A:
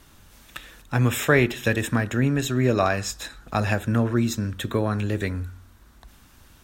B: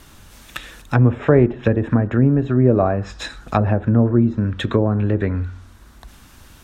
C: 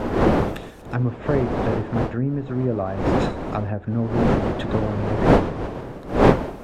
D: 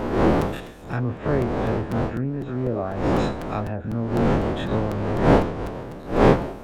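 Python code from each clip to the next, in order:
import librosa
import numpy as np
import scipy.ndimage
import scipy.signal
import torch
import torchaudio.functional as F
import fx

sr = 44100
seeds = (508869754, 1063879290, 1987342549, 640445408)

y1 = fx.env_lowpass_down(x, sr, base_hz=710.0, full_db=-19.5)
y1 = y1 * librosa.db_to_amplitude(7.0)
y2 = fx.dmg_wind(y1, sr, seeds[0], corner_hz=520.0, level_db=-14.0)
y2 = y2 * librosa.db_to_amplitude(-8.5)
y3 = fx.spec_dilate(y2, sr, span_ms=60)
y3 = fx.buffer_crackle(y3, sr, first_s=0.41, period_s=0.25, block=256, kind='repeat')
y3 = y3 * librosa.db_to_amplitude(-5.0)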